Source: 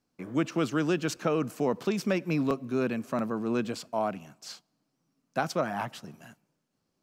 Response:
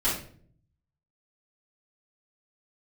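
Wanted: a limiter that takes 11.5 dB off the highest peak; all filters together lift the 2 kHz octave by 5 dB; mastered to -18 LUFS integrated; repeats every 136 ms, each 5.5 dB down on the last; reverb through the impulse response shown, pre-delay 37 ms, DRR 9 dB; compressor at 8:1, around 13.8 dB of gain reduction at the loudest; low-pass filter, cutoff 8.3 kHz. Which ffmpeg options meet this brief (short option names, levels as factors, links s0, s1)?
-filter_complex "[0:a]lowpass=8300,equalizer=f=2000:t=o:g=7,acompressor=threshold=0.0158:ratio=8,alimiter=level_in=3.35:limit=0.0631:level=0:latency=1,volume=0.299,aecho=1:1:136|272|408|544|680|816|952:0.531|0.281|0.149|0.079|0.0419|0.0222|0.0118,asplit=2[s0][s1];[1:a]atrim=start_sample=2205,adelay=37[s2];[s1][s2]afir=irnorm=-1:irlink=0,volume=0.106[s3];[s0][s3]amix=inputs=2:normalize=0,volume=17.8"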